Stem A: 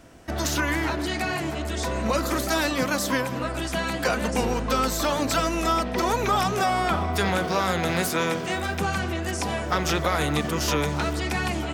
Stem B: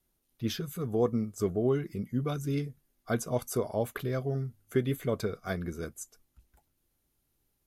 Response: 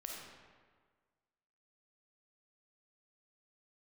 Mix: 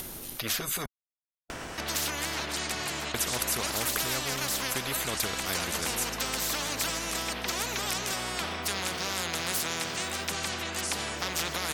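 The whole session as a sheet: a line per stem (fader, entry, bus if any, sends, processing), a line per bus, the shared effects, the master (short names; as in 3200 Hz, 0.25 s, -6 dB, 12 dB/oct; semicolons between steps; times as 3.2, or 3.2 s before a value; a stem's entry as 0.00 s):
-10.5 dB, 1.50 s, no send, high shelf 7700 Hz -5.5 dB
+2.5 dB, 0.00 s, muted 0.86–3.14, no send, dry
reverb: off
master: upward compressor, threshold -43 dBFS; spectral compressor 4:1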